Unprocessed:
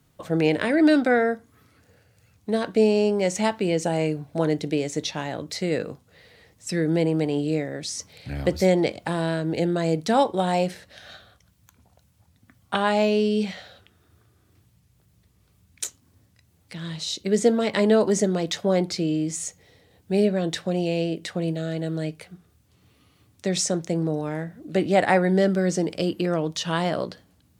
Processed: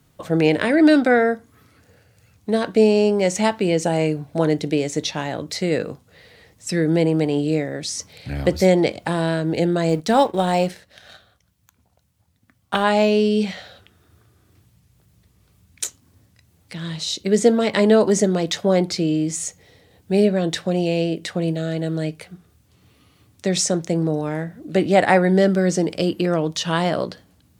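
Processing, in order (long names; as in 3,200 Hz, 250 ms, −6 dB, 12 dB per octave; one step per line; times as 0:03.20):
0:09.89–0:12.84: mu-law and A-law mismatch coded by A
level +4 dB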